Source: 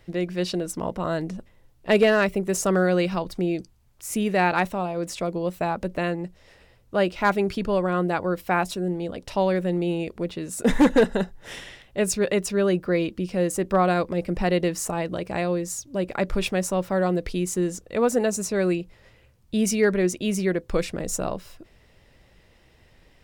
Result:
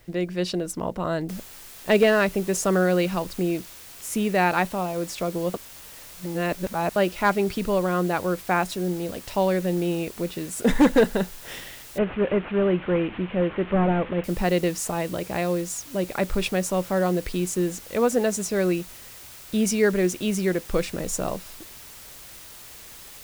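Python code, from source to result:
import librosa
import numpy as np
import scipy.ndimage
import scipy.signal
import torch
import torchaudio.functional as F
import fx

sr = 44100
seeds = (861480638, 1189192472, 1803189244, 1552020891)

y = fx.noise_floor_step(x, sr, seeds[0], at_s=1.29, before_db=-64, after_db=-44, tilt_db=0.0)
y = fx.delta_mod(y, sr, bps=16000, step_db=-32.0, at=(11.98, 14.24))
y = fx.edit(y, sr, fx.reverse_span(start_s=5.54, length_s=1.42), tone=tone)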